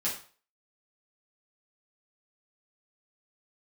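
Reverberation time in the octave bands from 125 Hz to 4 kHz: 0.45 s, 0.35 s, 0.40 s, 0.40 s, 0.40 s, 0.40 s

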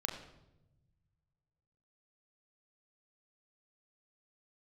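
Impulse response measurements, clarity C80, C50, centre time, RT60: 9.0 dB, 7.5 dB, 31 ms, 0.95 s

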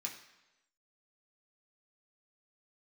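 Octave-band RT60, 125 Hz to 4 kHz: 0.90 s, 0.90 s, 1.0 s, 1.0 s, 1.0 s, 0.95 s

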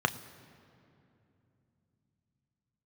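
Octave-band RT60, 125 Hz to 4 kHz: 5.0 s, 4.5 s, 3.1 s, 2.5 s, 2.3 s, 1.7 s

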